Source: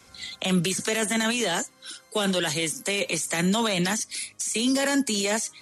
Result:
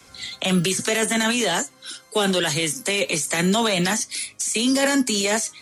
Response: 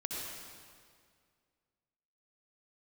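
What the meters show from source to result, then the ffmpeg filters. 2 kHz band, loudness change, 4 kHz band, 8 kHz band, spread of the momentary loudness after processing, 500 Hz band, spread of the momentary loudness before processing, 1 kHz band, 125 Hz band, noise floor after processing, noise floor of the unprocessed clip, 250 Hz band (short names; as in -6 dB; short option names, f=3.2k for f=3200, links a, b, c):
+4.0 dB, +4.0 dB, +4.0 dB, +4.0 dB, 7 LU, +4.5 dB, 7 LU, +4.5 dB, +3.0 dB, -51 dBFS, -55 dBFS, +3.5 dB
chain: -filter_complex "[0:a]flanger=delay=6.8:depth=1.3:regen=73:speed=1.9:shape=sinusoidal,acrossover=split=130|640|2800[a][b][c][d];[a]acrusher=samples=29:mix=1:aa=0.000001[e];[e][b][c][d]amix=inputs=4:normalize=0,volume=8.5dB"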